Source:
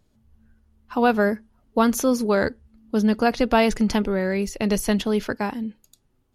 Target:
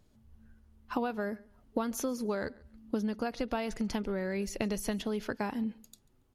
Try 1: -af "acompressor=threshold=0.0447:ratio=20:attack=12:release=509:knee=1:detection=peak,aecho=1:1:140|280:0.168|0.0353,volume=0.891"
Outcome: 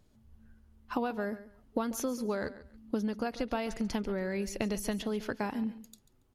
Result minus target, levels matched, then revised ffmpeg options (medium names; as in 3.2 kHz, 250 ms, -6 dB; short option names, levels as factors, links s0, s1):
echo-to-direct +8 dB
-af "acompressor=threshold=0.0447:ratio=20:attack=12:release=509:knee=1:detection=peak,aecho=1:1:140|280:0.0668|0.014,volume=0.891"